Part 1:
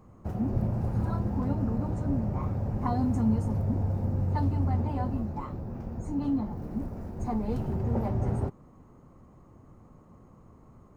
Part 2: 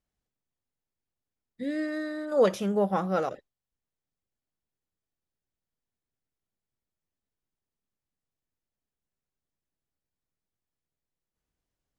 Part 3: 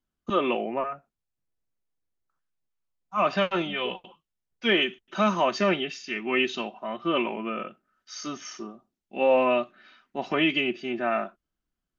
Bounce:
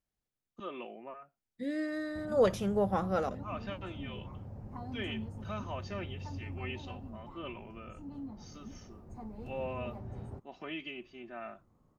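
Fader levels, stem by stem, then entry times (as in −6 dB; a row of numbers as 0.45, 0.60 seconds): −15.0, −4.0, −17.5 decibels; 1.90, 0.00, 0.30 seconds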